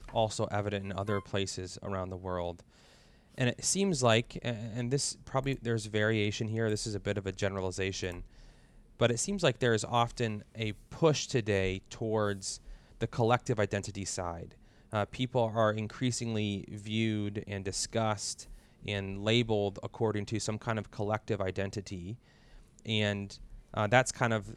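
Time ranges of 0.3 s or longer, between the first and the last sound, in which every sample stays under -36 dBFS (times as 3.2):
2.6–3.38
8.19–9
12.56–13.01
14.45–14.93
18.41–18.86
22.13–22.85
23.33–23.74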